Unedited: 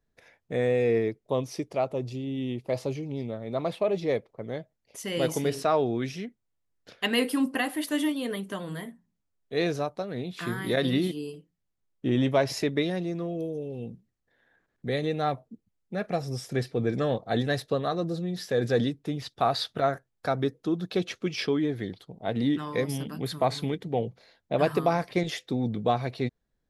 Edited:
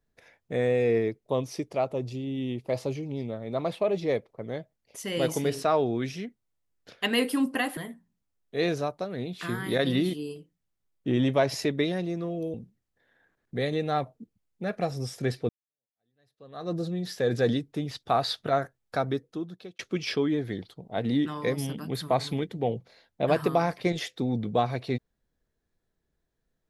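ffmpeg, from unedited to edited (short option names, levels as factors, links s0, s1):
-filter_complex "[0:a]asplit=5[s0][s1][s2][s3][s4];[s0]atrim=end=7.772[s5];[s1]atrim=start=8.748:end=13.522[s6];[s2]atrim=start=13.848:end=16.8,asetpts=PTS-STARTPTS,afade=t=out:st=2.948:d=0.004:c=hsin[s7];[s3]atrim=start=16.8:end=21.1,asetpts=PTS-STARTPTS,afade=t=in:d=1.23:c=exp,afade=t=out:st=3.48:d=0.82[s8];[s4]atrim=start=21.1,asetpts=PTS-STARTPTS,afade=t=in:d=0.004:c=hsin[s9];[s5][s6]acrossfade=d=0.004:c1=hsin:c2=hsin[s10];[s7][s8][s9]concat=n=3:v=0:a=1[s11];[s10][s11]acrossfade=d=0.004:c1=hsin:c2=hsin"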